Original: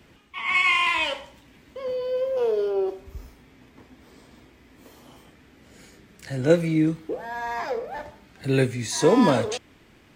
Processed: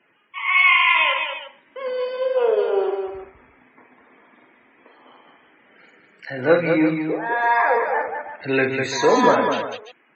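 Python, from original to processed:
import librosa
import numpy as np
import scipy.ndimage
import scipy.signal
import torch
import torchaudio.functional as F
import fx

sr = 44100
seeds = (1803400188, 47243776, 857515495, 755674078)

y = fx.rider(x, sr, range_db=5, speed_s=2.0)
y = fx.leveller(y, sr, passes=1)
y = fx.bandpass_q(y, sr, hz=1500.0, q=0.64)
y = fx.spec_topn(y, sr, count=64)
y = fx.echo_multitap(y, sr, ms=(48, 201, 342), db=(-7.0, -5.5, -12.5))
y = F.gain(torch.from_numpy(y), 5.0).numpy()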